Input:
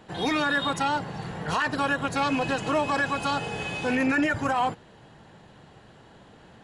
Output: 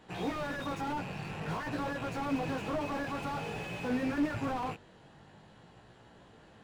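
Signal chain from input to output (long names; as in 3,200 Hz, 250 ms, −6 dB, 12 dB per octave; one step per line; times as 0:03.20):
loose part that buzzes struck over −42 dBFS, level −25 dBFS
chorus effect 0.5 Hz, delay 16.5 ms, depth 4.8 ms
slew-rate limiting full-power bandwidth 24 Hz
level −2.5 dB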